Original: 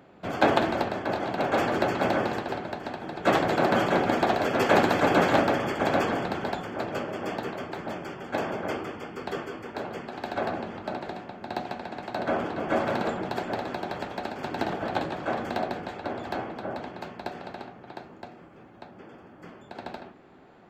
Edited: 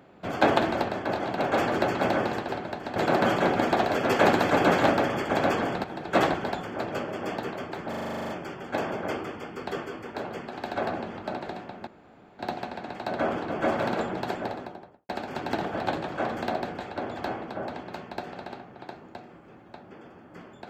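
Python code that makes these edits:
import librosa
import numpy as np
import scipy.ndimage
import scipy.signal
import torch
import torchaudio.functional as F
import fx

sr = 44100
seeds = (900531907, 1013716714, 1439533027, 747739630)

y = fx.studio_fade_out(x, sr, start_s=13.36, length_s=0.81)
y = fx.edit(y, sr, fx.move(start_s=2.96, length_s=0.5, to_s=6.34),
    fx.stutter(start_s=7.89, slice_s=0.04, count=11),
    fx.insert_room_tone(at_s=11.47, length_s=0.52), tone=tone)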